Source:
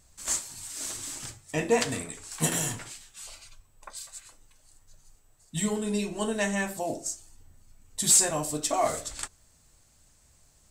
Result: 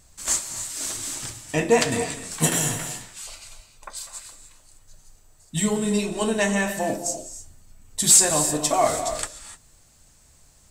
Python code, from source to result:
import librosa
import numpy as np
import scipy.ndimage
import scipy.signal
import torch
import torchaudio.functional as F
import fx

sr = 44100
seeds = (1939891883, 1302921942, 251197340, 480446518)

y = fx.rev_gated(x, sr, seeds[0], gate_ms=320, shape='rising', drr_db=9.5)
y = y * 10.0 ** (5.5 / 20.0)